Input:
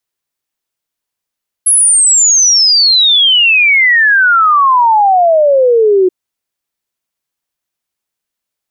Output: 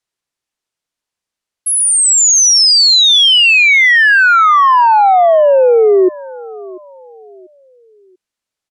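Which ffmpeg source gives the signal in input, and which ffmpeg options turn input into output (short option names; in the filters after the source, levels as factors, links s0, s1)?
-f lavfi -i "aevalsrc='0.562*clip(min(t,4.43-t)/0.01,0,1)*sin(2*PI*11000*4.43/log(360/11000)*(exp(log(360/11000)*t/4.43)-1))':d=4.43:s=44100"
-af "lowpass=8900,aecho=1:1:690|1380|2070:0.1|0.035|0.0123"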